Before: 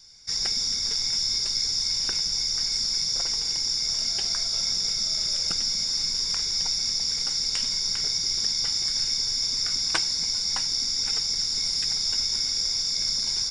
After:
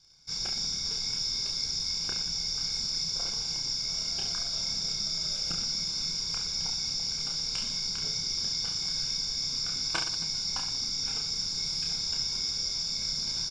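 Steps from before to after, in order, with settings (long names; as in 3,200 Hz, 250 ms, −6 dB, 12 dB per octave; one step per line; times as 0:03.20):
parametric band 150 Hz +7 dB 0.56 octaves
in parallel at −6.5 dB: bit reduction 7 bits
on the sum: Butterworth band-reject 1,900 Hz, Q 4.7
high-frequency loss of the air 63 metres
reverse bouncing-ball delay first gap 30 ms, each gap 1.3×, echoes 5
level −8 dB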